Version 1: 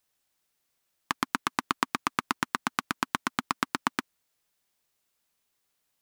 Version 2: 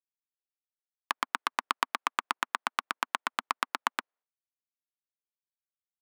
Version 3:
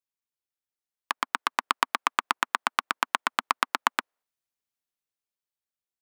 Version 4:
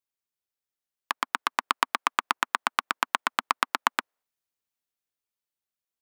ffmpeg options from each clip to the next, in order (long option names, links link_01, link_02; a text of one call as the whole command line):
ffmpeg -i in.wav -af "adynamicsmooth=sensitivity=1:basefreq=1300,highpass=590,agate=range=-33dB:threshold=-59dB:ratio=3:detection=peak" out.wav
ffmpeg -i in.wav -af "dynaudnorm=framelen=290:gausssize=9:maxgain=11.5dB" out.wav
ffmpeg -i in.wav -af "equalizer=frequency=15000:width=7:gain=7.5" out.wav